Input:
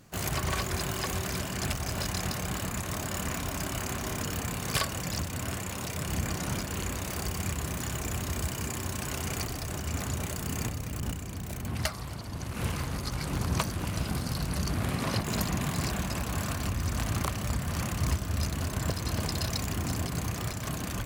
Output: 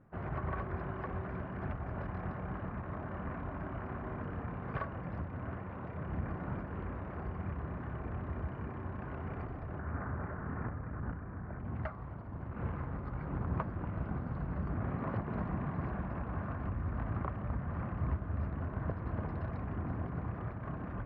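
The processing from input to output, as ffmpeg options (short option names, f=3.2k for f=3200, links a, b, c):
-filter_complex "[0:a]asettb=1/sr,asplit=3[a][b][c];[a]atrim=end=9.794[d];[b]atrim=start=9.79:end=11.59,asetpts=PTS-STARTPTS,afade=t=in:d=0.004:c=qsin,afade=t=out:st=1.796:d=0.004:c=qsin,lowpass=f=1.6k:t=q:w=2.2[e];[c]atrim=start=11.586[f];[d][e]acrossfade=d=0.004:c1=hsin:c2=qsin[g];[g][f]acrossfade=d=0.004:c1=qsin:c2=hsin,lowpass=f=1.6k:w=0.5412,lowpass=f=1.6k:w=1.3066,volume=-5.5dB"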